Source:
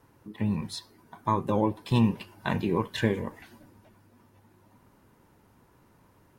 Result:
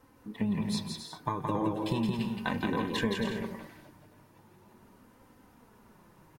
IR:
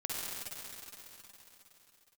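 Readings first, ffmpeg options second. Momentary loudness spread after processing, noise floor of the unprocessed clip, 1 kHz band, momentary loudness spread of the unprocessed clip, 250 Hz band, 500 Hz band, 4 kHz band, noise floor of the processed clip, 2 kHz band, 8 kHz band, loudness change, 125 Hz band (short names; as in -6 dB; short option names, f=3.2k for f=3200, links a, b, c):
10 LU, -62 dBFS, -3.5 dB, 13 LU, -2.5 dB, -4.5 dB, +0.5 dB, -60 dBFS, -0.5 dB, +1.5 dB, -3.5 dB, -6.0 dB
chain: -filter_complex "[0:a]acompressor=threshold=-28dB:ratio=5,flanger=delay=3.8:depth=2.9:regen=30:speed=0.38:shape=sinusoidal,asplit=2[a][b];[b]aecho=0:1:170|272|333.2|369.9|392:0.631|0.398|0.251|0.158|0.1[c];[a][c]amix=inputs=2:normalize=0,volume=4dB"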